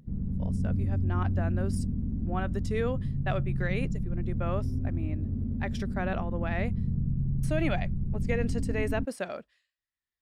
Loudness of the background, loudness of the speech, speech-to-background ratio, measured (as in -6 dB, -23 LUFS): -32.0 LUFS, -35.5 LUFS, -3.5 dB